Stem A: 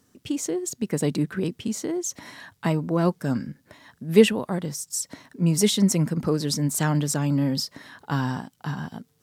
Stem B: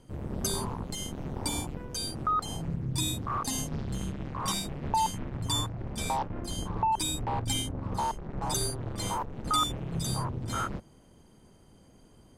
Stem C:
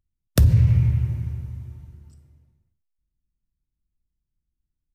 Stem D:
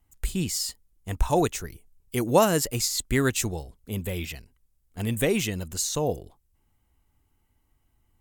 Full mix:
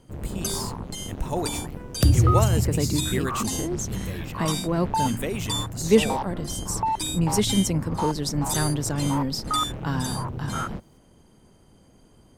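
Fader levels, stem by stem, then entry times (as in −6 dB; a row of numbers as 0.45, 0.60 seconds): −2.5, +2.0, −2.5, −6.0 decibels; 1.75, 0.00, 1.65, 0.00 seconds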